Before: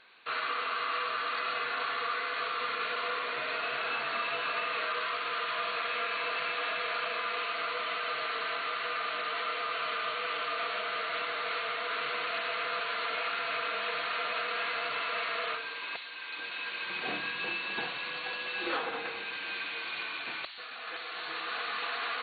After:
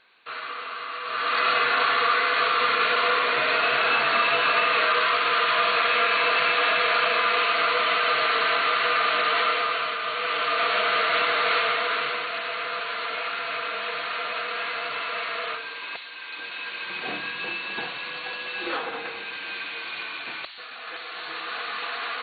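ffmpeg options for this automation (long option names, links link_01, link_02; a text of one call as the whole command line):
ffmpeg -i in.wav -af "volume=19dB,afade=type=in:start_time=1.02:duration=0.43:silence=0.237137,afade=type=out:start_time=9.42:duration=0.56:silence=0.421697,afade=type=in:start_time=9.98:duration=0.85:silence=0.421697,afade=type=out:start_time=11.58:duration=0.69:silence=0.398107" out.wav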